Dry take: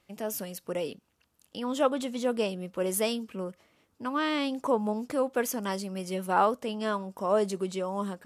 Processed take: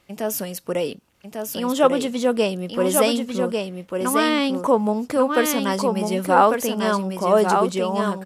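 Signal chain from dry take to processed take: delay 1147 ms -4.5 dB; trim +8.5 dB

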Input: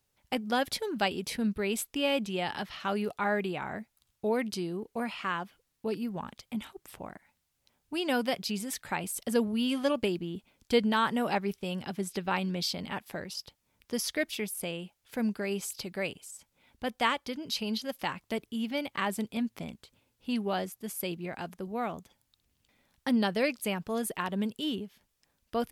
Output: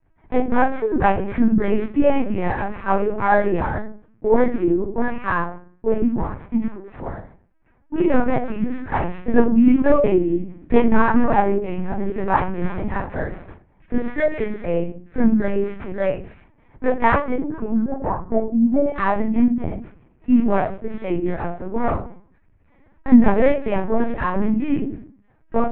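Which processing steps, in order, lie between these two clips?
sorted samples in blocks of 8 samples; low-pass 2 kHz 24 dB/octave, from 17.37 s 1.1 kHz, from 18.87 s 2.1 kHz; de-hum 265 Hz, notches 7; reverberation RT60 0.40 s, pre-delay 3 ms, DRR -8 dB; LPC vocoder at 8 kHz pitch kept

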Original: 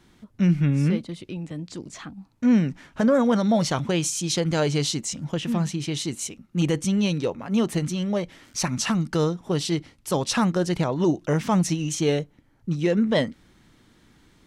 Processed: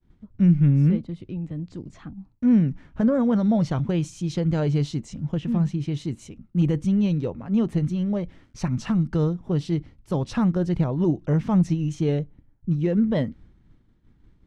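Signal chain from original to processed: RIAA curve playback; expander -38 dBFS; trim -6.5 dB

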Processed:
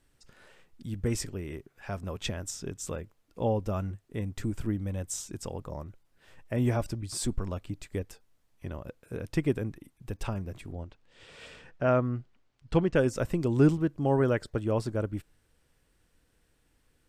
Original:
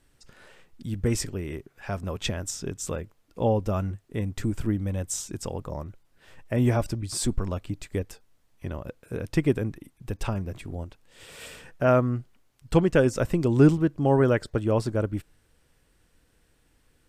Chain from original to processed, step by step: 10.72–12.96 s: low-pass 5.1 kHz 12 dB/octave; trim -4.5 dB

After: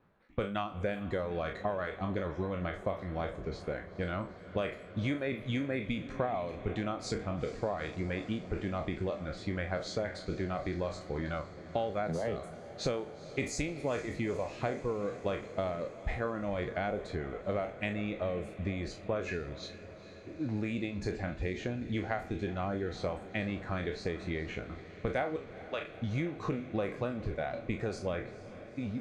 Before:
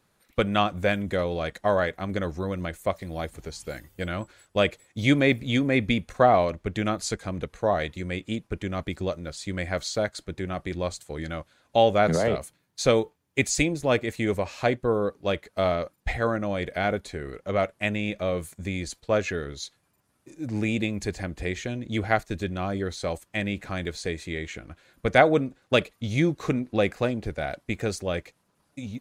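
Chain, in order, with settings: spectral sustain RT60 0.64 s; reverb removal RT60 0.63 s; level-controlled noise filter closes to 2.5 kHz, open at -18.5 dBFS; treble shelf 2.5 kHz -9.5 dB; compression 6:1, threshold -31 dBFS, peak gain reduction 17.5 dB; 25.36–25.94 s: band-pass 600–6100 Hz; echo that smears into a reverb 454 ms, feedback 71%, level -15 dB

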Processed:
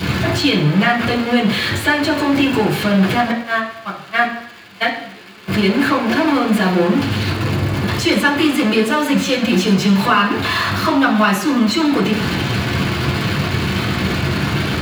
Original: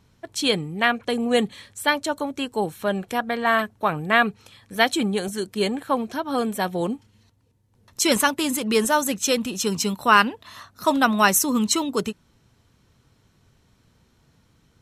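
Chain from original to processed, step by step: jump at every zero crossing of -19 dBFS; 3.31–5.48 s: gate -14 dBFS, range -34 dB; compression 2.5:1, threshold -21 dBFS, peak gain reduction 8.5 dB; crackle 570 per s -30 dBFS; reverberation RT60 0.65 s, pre-delay 3 ms, DRR -6 dB; trim -8 dB

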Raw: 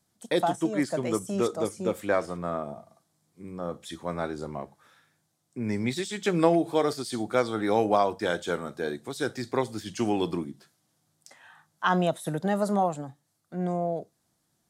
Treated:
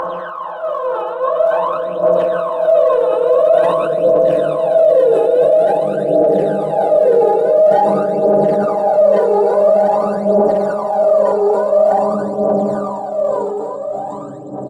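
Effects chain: random holes in the spectrogram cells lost 44%; reverb removal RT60 1.5 s; harmonic-percussive split percussive +5 dB; inverted gate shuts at -14 dBFS, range -27 dB; band-pass filter 570 Hz, Q 2.7; Paulstretch 10×, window 1.00 s, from 11.67 s; phaser 0.48 Hz, delay 2.4 ms, feedback 76%; speakerphone echo 140 ms, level -22 dB; loudness maximiser +22.5 dB; decay stretcher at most 22 dB/s; trim -3.5 dB

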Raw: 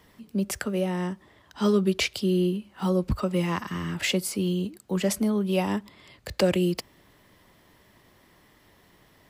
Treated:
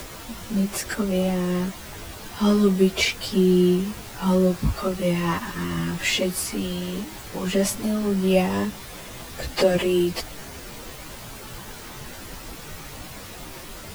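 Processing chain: added noise pink -41 dBFS; plain phase-vocoder stretch 1.5×; trim +6 dB

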